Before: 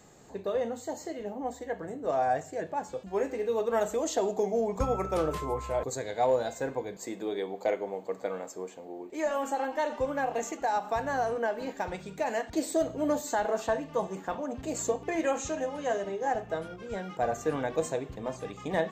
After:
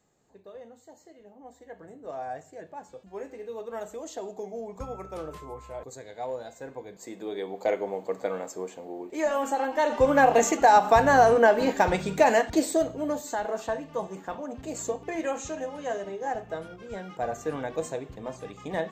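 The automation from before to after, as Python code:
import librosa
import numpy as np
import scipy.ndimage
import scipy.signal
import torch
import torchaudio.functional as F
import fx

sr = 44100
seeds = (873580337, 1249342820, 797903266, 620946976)

y = fx.gain(x, sr, db=fx.line((1.31, -15.0), (1.83, -8.5), (6.57, -8.5), (7.8, 3.5), (9.71, 3.5), (10.17, 11.5), (12.24, 11.5), (13.07, -1.5)))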